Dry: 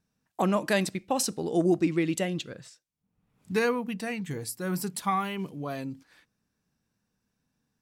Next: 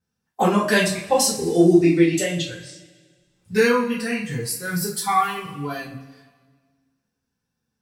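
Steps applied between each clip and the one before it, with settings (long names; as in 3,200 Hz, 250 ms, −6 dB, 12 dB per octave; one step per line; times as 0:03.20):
noise reduction from a noise print of the clip's start 10 dB
coupled-rooms reverb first 0.32 s, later 1.6 s, from −18 dB, DRR −9 dB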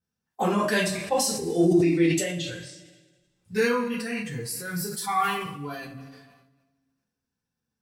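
level that may fall only so fast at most 47 dB per second
level −6.5 dB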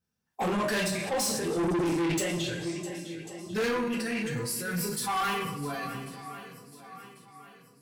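feedback echo with a long and a short gap by turns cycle 1,094 ms, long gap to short 1.5 to 1, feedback 37%, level −16 dB
soft clipping −26.5 dBFS, distortion −7 dB
level +1.5 dB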